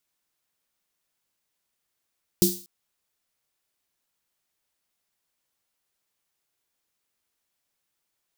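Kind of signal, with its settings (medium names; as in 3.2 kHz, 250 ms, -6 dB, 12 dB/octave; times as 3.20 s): snare drum length 0.24 s, tones 190 Hz, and 350 Hz, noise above 4 kHz, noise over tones -3 dB, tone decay 0.29 s, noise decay 0.42 s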